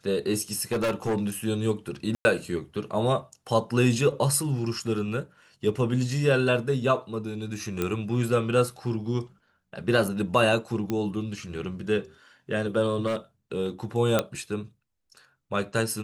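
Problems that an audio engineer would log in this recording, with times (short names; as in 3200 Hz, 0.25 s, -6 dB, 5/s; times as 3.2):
0.72–1.17 clipped -22 dBFS
2.15–2.25 gap 0.1 s
7.82 pop -13 dBFS
10.9 pop -16 dBFS
13.06–13.17 clipped -23.5 dBFS
14.19 pop -8 dBFS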